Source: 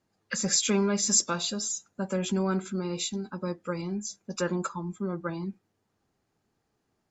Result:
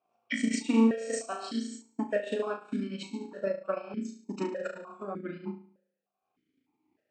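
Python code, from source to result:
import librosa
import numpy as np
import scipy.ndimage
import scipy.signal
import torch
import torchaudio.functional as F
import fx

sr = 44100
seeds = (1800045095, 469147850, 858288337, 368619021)

p1 = fx.pitch_glide(x, sr, semitones=2.5, runs='ending unshifted')
p2 = p1 + fx.room_flutter(p1, sr, wall_m=6.1, rt60_s=0.78, dry=0)
p3 = fx.transient(p2, sr, attack_db=8, sustain_db=-12)
p4 = fx.vowel_held(p3, sr, hz=3.3)
y = F.gain(torch.from_numpy(p4), 8.5).numpy()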